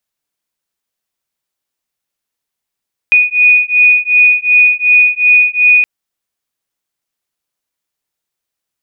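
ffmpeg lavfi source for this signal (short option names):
-f lavfi -i "aevalsrc='0.355*(sin(2*PI*2470*t)+sin(2*PI*2472.7*t))':d=2.72:s=44100"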